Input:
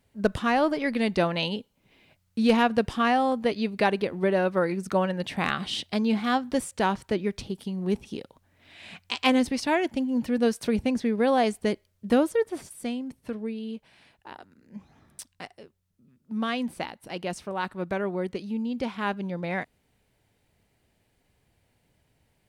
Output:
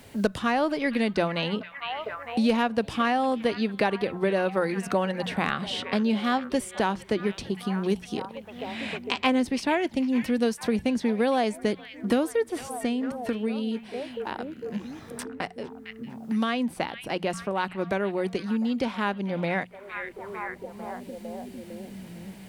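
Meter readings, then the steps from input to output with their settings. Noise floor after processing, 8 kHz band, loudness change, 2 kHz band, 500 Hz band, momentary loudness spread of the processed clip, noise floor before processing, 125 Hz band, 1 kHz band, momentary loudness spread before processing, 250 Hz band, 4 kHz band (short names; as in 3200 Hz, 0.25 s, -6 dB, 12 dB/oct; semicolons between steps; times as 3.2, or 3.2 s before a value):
-46 dBFS, +0.5 dB, -1.0 dB, +0.5 dB, 0.0 dB, 13 LU, -71 dBFS, 0.0 dB, -0.5 dB, 14 LU, +0.5 dB, 0.0 dB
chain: notches 60/120/180 Hz; delay with a stepping band-pass 0.454 s, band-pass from 2500 Hz, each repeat -0.7 oct, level -11.5 dB; three-band squash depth 70%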